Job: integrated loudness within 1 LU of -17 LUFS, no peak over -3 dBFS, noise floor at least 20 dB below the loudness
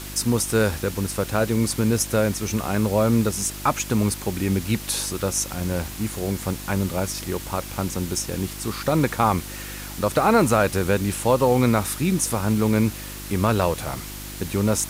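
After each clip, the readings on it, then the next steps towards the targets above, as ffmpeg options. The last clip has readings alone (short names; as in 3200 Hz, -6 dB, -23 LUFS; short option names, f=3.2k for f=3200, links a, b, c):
hum 50 Hz; harmonics up to 350 Hz; hum level -36 dBFS; noise floor -35 dBFS; noise floor target -43 dBFS; loudness -23.0 LUFS; peak -7.0 dBFS; loudness target -17.0 LUFS
-> -af "bandreject=f=50:t=h:w=4,bandreject=f=100:t=h:w=4,bandreject=f=150:t=h:w=4,bandreject=f=200:t=h:w=4,bandreject=f=250:t=h:w=4,bandreject=f=300:t=h:w=4,bandreject=f=350:t=h:w=4"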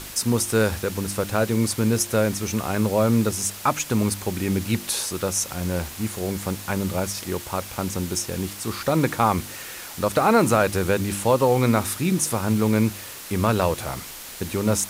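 hum none; noise floor -38 dBFS; noise floor target -43 dBFS
-> -af "afftdn=nr=6:nf=-38"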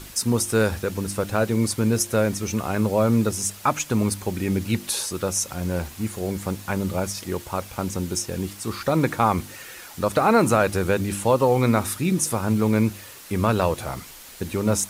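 noise floor -43 dBFS; noise floor target -44 dBFS
-> -af "afftdn=nr=6:nf=-43"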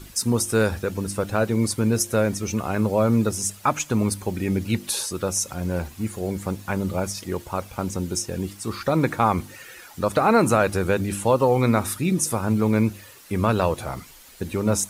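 noise floor -46 dBFS; loudness -23.5 LUFS; peak -6.5 dBFS; loudness target -17.0 LUFS
-> -af "volume=6.5dB,alimiter=limit=-3dB:level=0:latency=1"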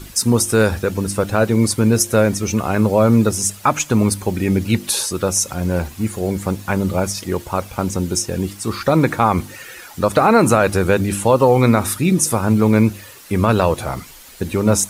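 loudness -17.5 LUFS; peak -3.0 dBFS; noise floor -40 dBFS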